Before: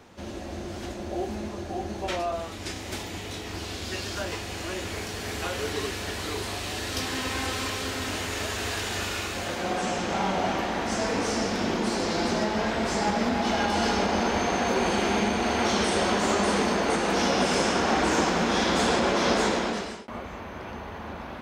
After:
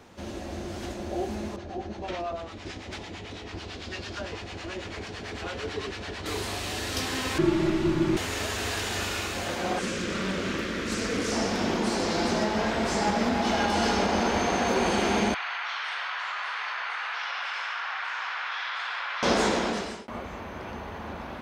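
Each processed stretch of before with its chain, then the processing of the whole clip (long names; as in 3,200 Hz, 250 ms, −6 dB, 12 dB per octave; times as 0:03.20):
0:01.56–0:06.26: low-pass filter 4,800 Hz + two-band tremolo in antiphase 9 Hz, crossover 700 Hz
0:07.38–0:08.17: RIAA equalisation playback + frequency shifter −420 Hz
0:09.79–0:11.32: Butterworth band-reject 800 Hz, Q 1.2 + highs frequency-modulated by the lows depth 0.31 ms
0:15.34–0:19.23: high-pass filter 1,200 Hz 24 dB per octave + high-frequency loss of the air 350 metres + envelope flattener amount 100%
whole clip: no processing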